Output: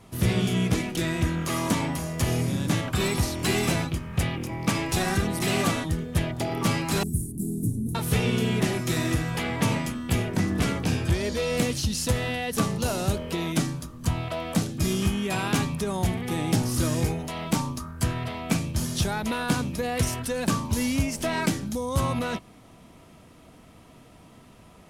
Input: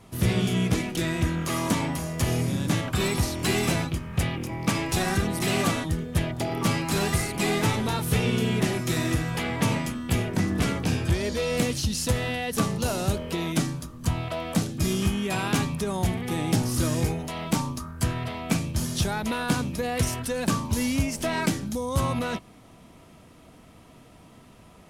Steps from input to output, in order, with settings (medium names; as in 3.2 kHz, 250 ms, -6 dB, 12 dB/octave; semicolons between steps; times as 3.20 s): 7.03–7.95 s: Chebyshev band-stop 280–9500 Hz, order 3